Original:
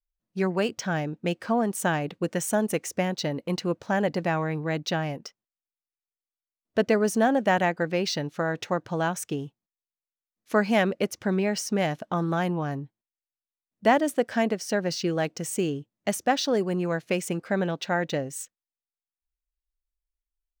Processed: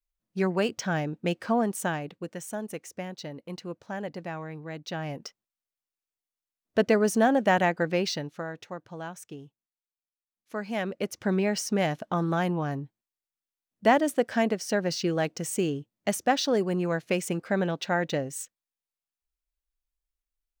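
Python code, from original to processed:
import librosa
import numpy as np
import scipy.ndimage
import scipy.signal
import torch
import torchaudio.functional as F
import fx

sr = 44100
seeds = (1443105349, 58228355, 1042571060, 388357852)

y = fx.gain(x, sr, db=fx.line((1.62, -0.5), (2.33, -10.0), (4.82, -10.0), (5.23, 0.0), (7.99, 0.0), (8.64, -11.5), (10.58, -11.5), (11.28, -0.5)))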